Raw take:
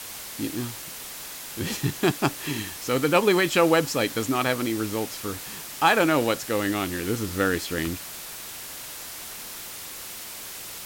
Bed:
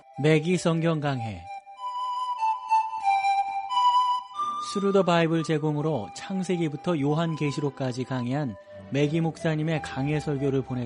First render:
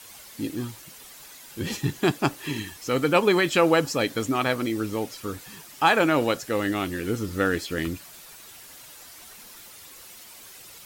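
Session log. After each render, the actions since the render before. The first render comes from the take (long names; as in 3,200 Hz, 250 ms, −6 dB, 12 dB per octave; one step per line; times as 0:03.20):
broadband denoise 10 dB, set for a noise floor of −38 dBFS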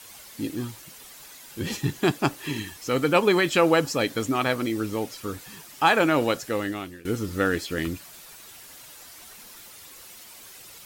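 0:06.46–0:07.05: fade out, to −20 dB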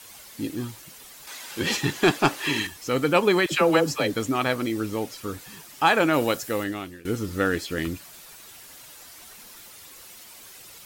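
0:01.27–0:02.67: mid-hump overdrive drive 16 dB, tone 4,400 Hz, clips at −7 dBFS
0:03.46–0:04.14: all-pass dispersion lows, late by 61 ms, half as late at 560 Hz
0:06.13–0:06.64: high-shelf EQ 9,900 Hz +10 dB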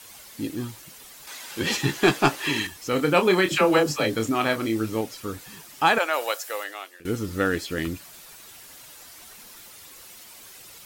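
0:01.78–0:02.36: double-tracking delay 15 ms −7 dB
0:02.90–0:05.01: double-tracking delay 27 ms −7 dB
0:05.98–0:07.00: high-pass filter 550 Hz 24 dB per octave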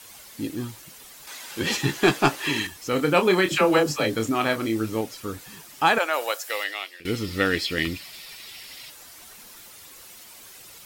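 0:06.49–0:08.90: gain on a spectral selection 1,800–5,600 Hz +9 dB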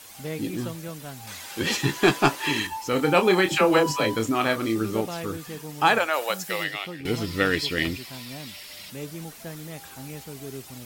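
mix in bed −12.5 dB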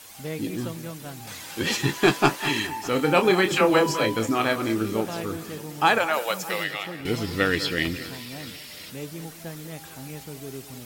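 delay that swaps between a low-pass and a high-pass 203 ms, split 2,300 Hz, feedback 68%, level −14 dB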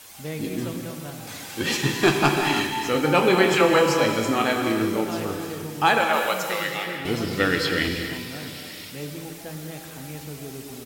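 single-tap delay 925 ms −22 dB
reverb whose tail is shaped and stops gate 380 ms flat, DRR 3.5 dB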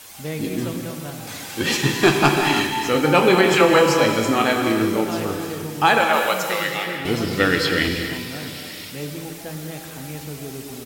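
level +3.5 dB
brickwall limiter −3 dBFS, peak gain reduction 2.5 dB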